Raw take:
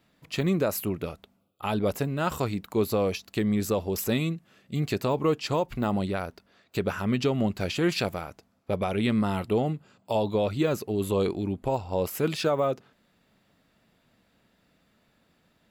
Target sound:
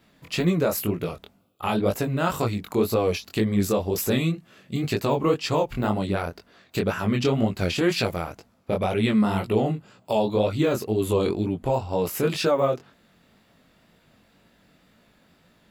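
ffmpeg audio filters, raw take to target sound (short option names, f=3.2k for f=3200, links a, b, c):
-filter_complex "[0:a]asplit=2[a][b];[b]acompressor=threshold=-35dB:ratio=6,volume=-1.5dB[c];[a][c]amix=inputs=2:normalize=0,flanger=delay=17:depth=7.3:speed=2,volume=4.5dB"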